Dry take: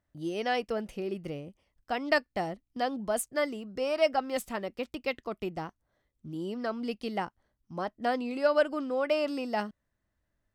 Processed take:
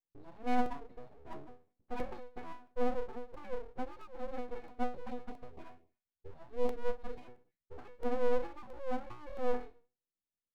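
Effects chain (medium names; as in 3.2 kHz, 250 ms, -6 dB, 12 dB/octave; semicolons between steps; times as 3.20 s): de-hum 78.39 Hz, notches 3; gate with hold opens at -59 dBFS; tilt EQ -4 dB/octave; comb 4.6 ms, depth 99%; compression 3:1, threshold -25 dBFS, peak gain reduction 10 dB; pitch-class resonator B, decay 0.35 s; full-wave rectifier; 4.96–7.24 s: LFO notch sine 5.9 Hz -> 1.3 Hz 290–1600 Hz; crackling interface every 0.67 s, samples 64, repeat, from 0.66 s; trim +5.5 dB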